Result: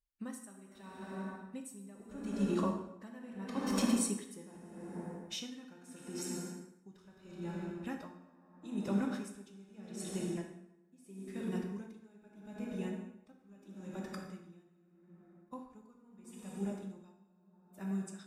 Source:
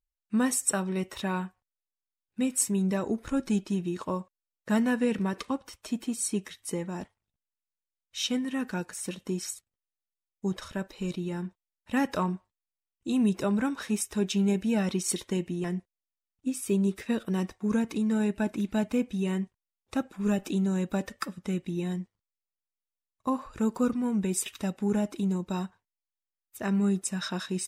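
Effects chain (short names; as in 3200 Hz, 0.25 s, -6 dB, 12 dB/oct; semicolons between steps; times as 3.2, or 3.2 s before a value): Doppler pass-by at 6.07, 8 m/s, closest 7.8 m; compressor 2:1, threshold -48 dBFS, peak gain reduction 12.5 dB; time stretch by phase-locked vocoder 0.66×; plate-style reverb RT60 2.6 s, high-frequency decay 0.5×, DRR -1.5 dB; dB-linear tremolo 0.78 Hz, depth 23 dB; gain +12 dB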